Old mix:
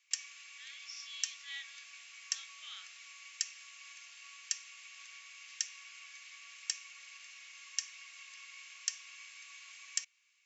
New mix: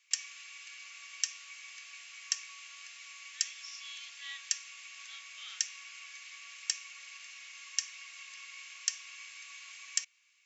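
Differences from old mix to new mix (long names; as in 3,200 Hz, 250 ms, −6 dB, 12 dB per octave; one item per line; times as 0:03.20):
speech: entry +2.75 s
background +3.5 dB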